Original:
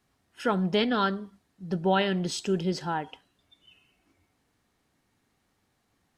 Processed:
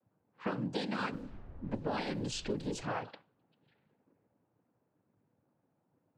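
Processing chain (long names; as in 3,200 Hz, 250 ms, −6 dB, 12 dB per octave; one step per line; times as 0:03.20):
cochlear-implant simulation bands 8
0:01.12–0:02.81: background noise brown −46 dBFS
low-pass that shuts in the quiet parts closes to 820 Hz, open at −24.5 dBFS
downward compressor 6 to 1, threshold −33 dBFS, peak gain reduction 13 dB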